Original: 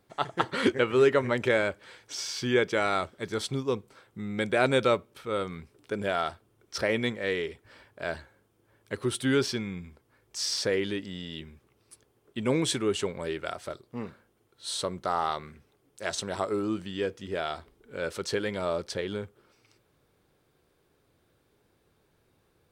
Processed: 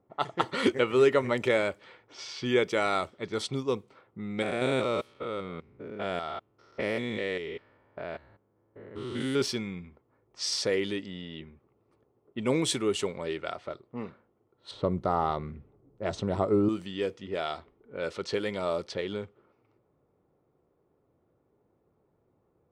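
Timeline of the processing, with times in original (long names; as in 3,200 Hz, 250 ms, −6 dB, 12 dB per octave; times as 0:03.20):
0:04.42–0:09.42: spectrum averaged block by block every 200 ms
0:14.71–0:16.69: spectral tilt −4 dB per octave
whole clip: notch filter 1,600 Hz, Q 7.5; low-pass that shuts in the quiet parts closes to 950 Hz, open at −25.5 dBFS; low-shelf EQ 65 Hz −11.5 dB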